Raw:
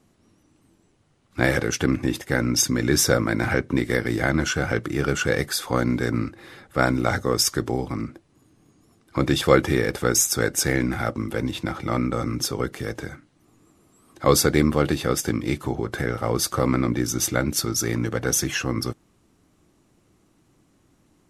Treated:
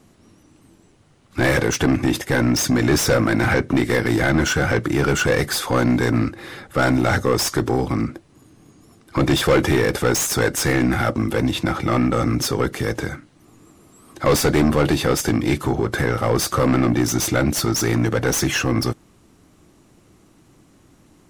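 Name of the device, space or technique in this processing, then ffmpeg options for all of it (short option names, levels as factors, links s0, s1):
saturation between pre-emphasis and de-emphasis: -af "highshelf=f=3100:g=11,asoftclip=type=tanh:threshold=0.112,highshelf=f=3100:g=-11,volume=2.66"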